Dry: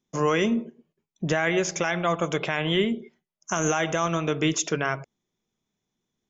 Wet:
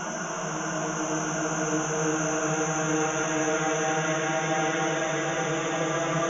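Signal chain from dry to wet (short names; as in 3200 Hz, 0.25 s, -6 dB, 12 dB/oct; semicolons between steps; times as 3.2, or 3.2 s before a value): regenerating reverse delay 0.158 s, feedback 47%, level -5.5 dB; Paulstretch 13×, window 0.50 s, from 3.47; gain -3 dB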